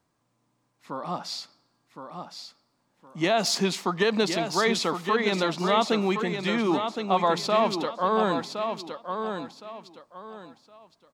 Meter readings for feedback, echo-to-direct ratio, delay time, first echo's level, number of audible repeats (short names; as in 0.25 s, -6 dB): 27%, -6.5 dB, 1.065 s, -7.0 dB, 3